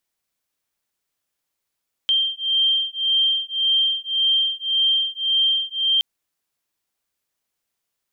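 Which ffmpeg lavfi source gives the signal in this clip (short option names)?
-f lavfi -i "aevalsrc='0.0944*(sin(2*PI*3160*t)+sin(2*PI*3161.8*t))':d=3.92:s=44100"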